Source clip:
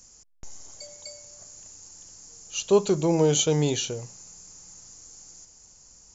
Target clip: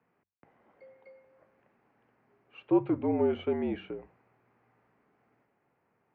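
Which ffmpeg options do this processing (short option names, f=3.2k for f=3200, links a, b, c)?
-af "bandreject=f=50:t=h:w=6,bandreject=f=100:t=h:w=6,bandreject=f=150:t=h:w=6,bandreject=f=200:t=h:w=6,bandreject=f=250:t=h:w=6,highpass=f=200:t=q:w=0.5412,highpass=f=200:t=q:w=1.307,lowpass=f=2.3k:t=q:w=0.5176,lowpass=f=2.3k:t=q:w=0.7071,lowpass=f=2.3k:t=q:w=1.932,afreqshift=-59,volume=-5dB"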